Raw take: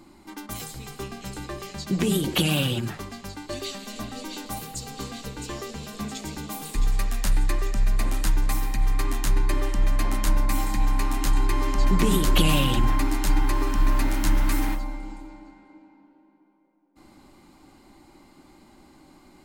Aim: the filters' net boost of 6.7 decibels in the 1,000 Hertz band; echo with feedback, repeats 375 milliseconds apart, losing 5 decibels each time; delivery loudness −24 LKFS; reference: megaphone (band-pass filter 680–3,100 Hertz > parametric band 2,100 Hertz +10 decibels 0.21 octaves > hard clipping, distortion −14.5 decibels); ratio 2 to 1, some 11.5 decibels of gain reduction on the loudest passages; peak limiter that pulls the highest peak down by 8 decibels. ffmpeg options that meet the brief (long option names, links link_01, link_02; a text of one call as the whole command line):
ffmpeg -i in.wav -af "equalizer=frequency=1000:width_type=o:gain=8.5,acompressor=threshold=-37dB:ratio=2,alimiter=level_in=0.5dB:limit=-24dB:level=0:latency=1,volume=-0.5dB,highpass=680,lowpass=3100,equalizer=frequency=2100:width_type=o:width=0.21:gain=10,aecho=1:1:375|750|1125|1500|1875|2250|2625:0.562|0.315|0.176|0.0988|0.0553|0.031|0.0173,asoftclip=type=hard:threshold=-35dB,volume=16dB" out.wav